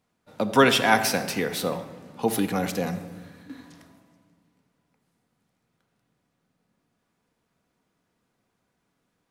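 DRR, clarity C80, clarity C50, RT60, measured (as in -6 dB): 7.5 dB, 12.0 dB, 10.5 dB, 1.5 s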